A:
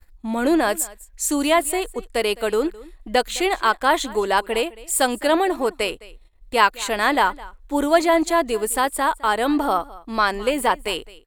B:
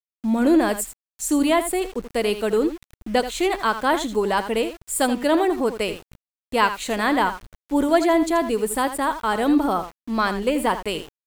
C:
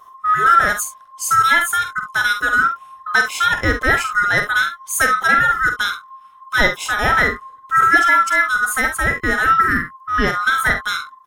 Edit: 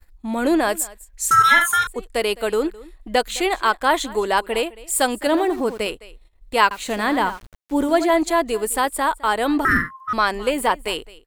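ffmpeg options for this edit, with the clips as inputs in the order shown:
-filter_complex "[2:a]asplit=2[s0][s1];[1:a]asplit=2[s2][s3];[0:a]asplit=5[s4][s5][s6][s7][s8];[s4]atrim=end=1.312[s9];[s0]atrim=start=1.308:end=1.872[s10];[s5]atrim=start=1.868:end=5.272[s11];[s2]atrim=start=5.268:end=5.862[s12];[s6]atrim=start=5.858:end=6.712[s13];[s3]atrim=start=6.708:end=8.102[s14];[s7]atrim=start=8.098:end=9.652[s15];[s1]atrim=start=9.648:end=10.132[s16];[s8]atrim=start=10.128[s17];[s9][s10]acrossfade=d=0.004:c1=hsin:c2=hsin[s18];[s18][s11]acrossfade=d=0.004:c1=hsin:c2=hsin[s19];[s19][s12]acrossfade=d=0.004:c1=hsin:c2=hsin[s20];[s20][s13]acrossfade=d=0.004:c1=hsin:c2=hsin[s21];[s21][s14]acrossfade=d=0.004:c1=hsin:c2=hsin[s22];[s22][s15]acrossfade=d=0.004:c1=hsin:c2=hsin[s23];[s23][s16]acrossfade=d=0.004:c1=hsin:c2=hsin[s24];[s24][s17]acrossfade=d=0.004:c1=hsin:c2=hsin"

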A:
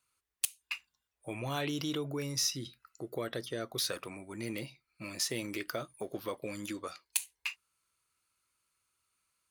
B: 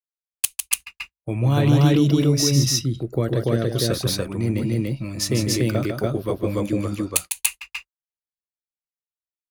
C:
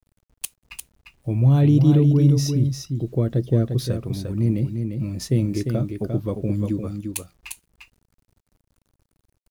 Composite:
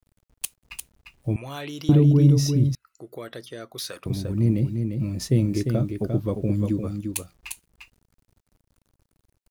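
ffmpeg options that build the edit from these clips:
-filter_complex "[0:a]asplit=2[s0][s1];[2:a]asplit=3[s2][s3][s4];[s2]atrim=end=1.362[s5];[s0]atrim=start=1.358:end=1.892[s6];[s3]atrim=start=1.888:end=2.752[s7];[s1]atrim=start=2.748:end=4.062[s8];[s4]atrim=start=4.058[s9];[s5][s6]acrossfade=d=0.004:c1=hsin:c2=hsin[s10];[s10][s7]acrossfade=d=0.004:c1=hsin:c2=hsin[s11];[s11][s8]acrossfade=d=0.004:c1=hsin:c2=hsin[s12];[s12][s9]acrossfade=d=0.004:c1=hsin:c2=hsin"

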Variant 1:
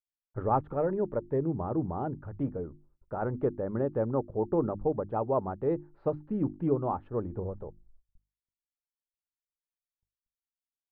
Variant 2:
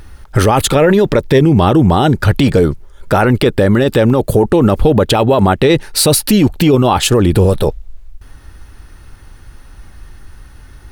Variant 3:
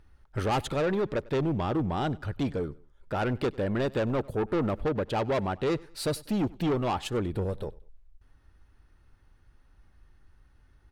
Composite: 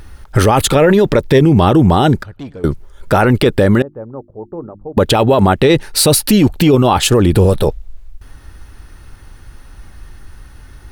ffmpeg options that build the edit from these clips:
-filter_complex "[1:a]asplit=3[s0][s1][s2];[s0]atrim=end=2.232[s3];[2:a]atrim=start=2.228:end=2.642[s4];[s1]atrim=start=2.638:end=3.822[s5];[0:a]atrim=start=3.818:end=4.972[s6];[s2]atrim=start=4.968[s7];[s3][s4]acrossfade=d=0.004:c1=hsin:c2=hsin[s8];[s8][s5]acrossfade=d=0.004:c1=hsin:c2=hsin[s9];[s9][s6]acrossfade=d=0.004:c1=hsin:c2=hsin[s10];[s10][s7]acrossfade=d=0.004:c1=hsin:c2=hsin"

